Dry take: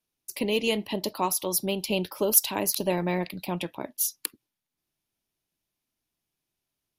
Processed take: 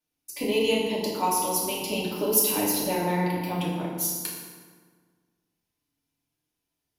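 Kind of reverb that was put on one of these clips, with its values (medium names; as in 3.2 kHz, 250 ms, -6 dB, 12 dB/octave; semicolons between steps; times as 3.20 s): FDN reverb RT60 1.6 s, low-frequency decay 1.2×, high-frequency decay 0.65×, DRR -5.5 dB; trim -5 dB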